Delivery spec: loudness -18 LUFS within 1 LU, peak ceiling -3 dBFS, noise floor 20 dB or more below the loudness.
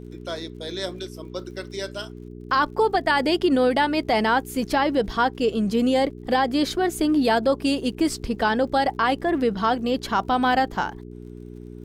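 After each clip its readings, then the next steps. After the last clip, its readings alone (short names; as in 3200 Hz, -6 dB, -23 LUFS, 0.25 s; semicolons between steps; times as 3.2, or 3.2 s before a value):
ticks 50/s; hum 60 Hz; harmonics up to 420 Hz; hum level -37 dBFS; loudness -22.5 LUFS; peak -9.5 dBFS; loudness target -18.0 LUFS
-> de-click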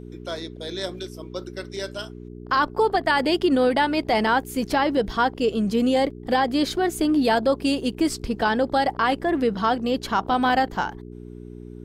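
ticks 0.084/s; hum 60 Hz; harmonics up to 420 Hz; hum level -37 dBFS
-> de-hum 60 Hz, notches 7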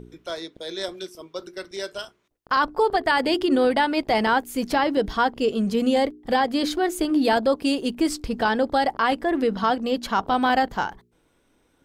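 hum none; loudness -23.0 LUFS; peak -10.0 dBFS; loudness target -18.0 LUFS
-> gain +5 dB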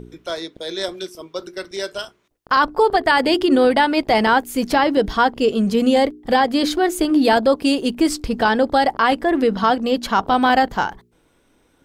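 loudness -18.0 LUFS; peak -5.0 dBFS; noise floor -60 dBFS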